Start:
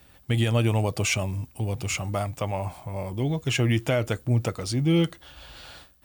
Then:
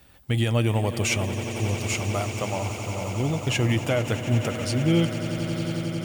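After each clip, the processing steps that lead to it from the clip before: swelling echo 90 ms, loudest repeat 8, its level -15 dB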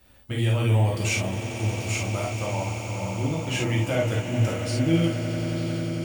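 non-linear reverb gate 90 ms flat, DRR -3.5 dB; gain -6.5 dB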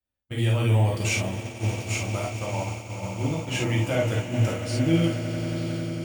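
expander -25 dBFS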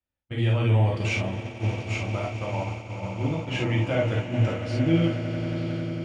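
LPF 3500 Hz 12 dB/oct

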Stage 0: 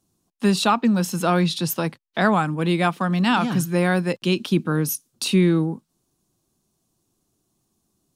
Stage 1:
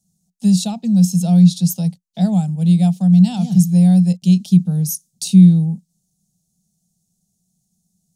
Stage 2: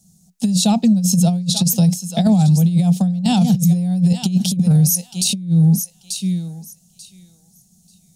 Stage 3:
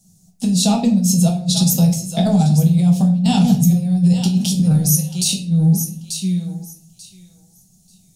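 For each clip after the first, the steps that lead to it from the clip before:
EQ curve 130 Hz 0 dB, 180 Hz +14 dB, 300 Hz -18 dB, 750 Hz -4 dB, 1100 Hz -28 dB, 1700 Hz -24 dB, 3600 Hz -4 dB, 6600 Hz +7 dB, 14000 Hz +1 dB; gain -1 dB
thinning echo 0.888 s, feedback 19%, high-pass 750 Hz, level -13.5 dB; negative-ratio compressor -17 dBFS, ratio -0.5; maximiser +14.5 dB; gain -6.5 dB
shoebox room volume 52 m³, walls mixed, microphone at 0.57 m; gain -1.5 dB

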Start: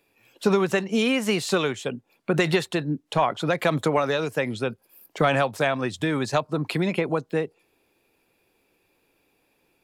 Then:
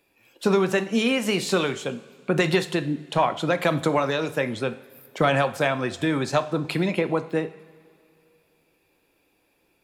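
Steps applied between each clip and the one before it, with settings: two-slope reverb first 0.54 s, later 2.7 s, from -17 dB, DRR 9.5 dB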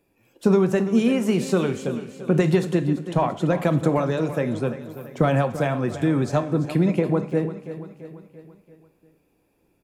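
EQ curve 170 Hz 0 dB, 4000 Hz -16 dB, 6100 Hz -10 dB; on a send: feedback echo 0.339 s, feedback 52%, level -13 dB; on the sum: gain +6 dB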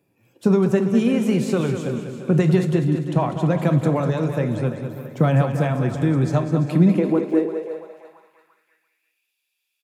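feedback echo 0.198 s, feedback 44%, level -9 dB; high-pass sweep 120 Hz -> 3200 Hz, 6.5–9.33; gain -1.5 dB

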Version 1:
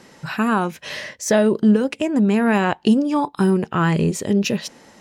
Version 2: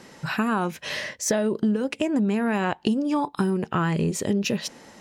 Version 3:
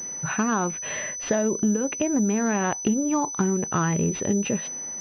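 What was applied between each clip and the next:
compressor, threshold -20 dBFS, peak gain reduction 9.5 dB
vibrato 2.3 Hz 24 cents; pulse-width modulation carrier 6000 Hz

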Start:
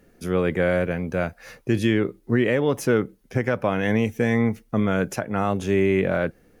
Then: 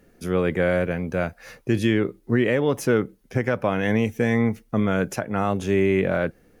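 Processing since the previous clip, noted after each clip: nothing audible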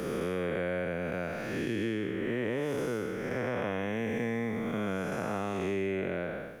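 time blur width 0.36 s; low shelf 220 Hz -8.5 dB; three-band squash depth 100%; gain -5.5 dB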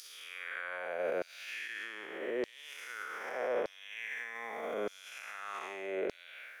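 limiter -28.5 dBFS, peak gain reduction 7.5 dB; LFO high-pass saw down 0.82 Hz 390–4800 Hz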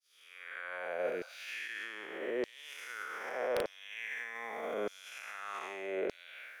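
opening faded in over 0.85 s; spectral repair 1.08–1.34, 510–1600 Hz both; wrapped overs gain 23.5 dB

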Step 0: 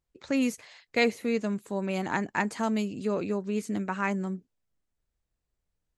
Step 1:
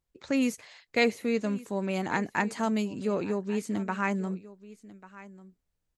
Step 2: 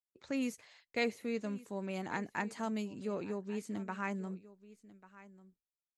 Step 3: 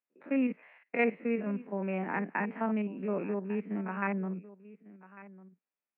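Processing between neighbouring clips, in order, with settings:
echo 1.143 s -18.5 dB
expander -53 dBFS; gain -9 dB
stepped spectrum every 50 ms; Chebyshev band-pass 170–2600 Hz, order 5; gain +7 dB

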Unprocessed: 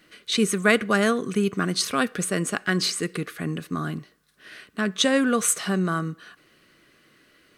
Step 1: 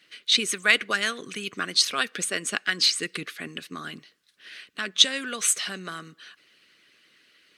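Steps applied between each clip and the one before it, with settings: weighting filter D; harmonic-percussive split harmonic -10 dB; gain -4.5 dB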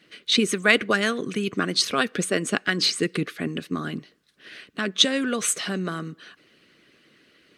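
tilt shelf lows +7.5 dB, about 890 Hz; gain +5.5 dB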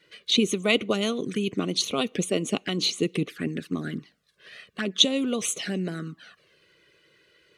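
envelope flanger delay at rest 2.1 ms, full sweep at -22.5 dBFS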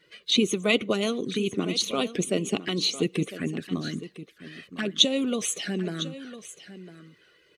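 bin magnitudes rounded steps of 15 dB; echo 1.004 s -14.5 dB

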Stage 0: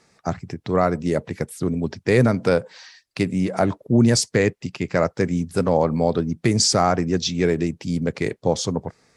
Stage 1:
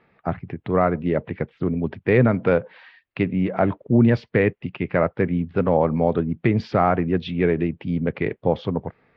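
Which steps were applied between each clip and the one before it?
steep low-pass 3100 Hz 36 dB/oct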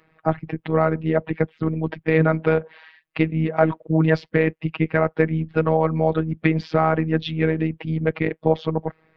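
robotiser 159 Hz; harmonic-percussive split percussive +7 dB; gain +1 dB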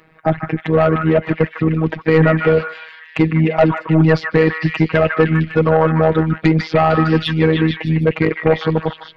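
soft clip -12.5 dBFS, distortion -11 dB; delay with a stepping band-pass 0.152 s, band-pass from 1500 Hz, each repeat 0.7 oct, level -1 dB; gain +8.5 dB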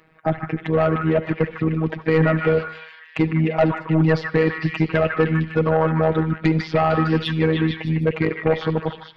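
reverb RT60 0.30 s, pre-delay 68 ms, DRR 15.5 dB; gain -5 dB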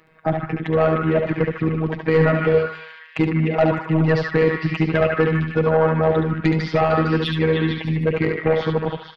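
echo 71 ms -5.5 dB

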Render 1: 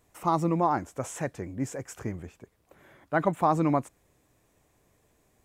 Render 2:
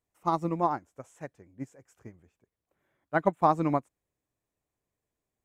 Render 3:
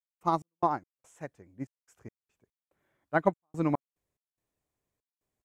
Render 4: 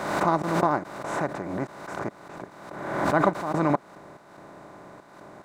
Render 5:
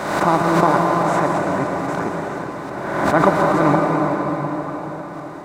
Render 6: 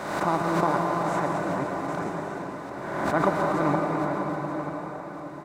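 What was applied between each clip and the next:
upward expander 2.5:1, over -35 dBFS; gain +2 dB
step gate ".x.x.xxx" 72 bpm -60 dB
per-bin compression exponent 0.4; backwards sustainer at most 46 dB/s
reverb RT60 5.0 s, pre-delay 0.108 s, DRR -0.5 dB; gain +6 dB
echo 0.936 s -11.5 dB; gain -8.5 dB

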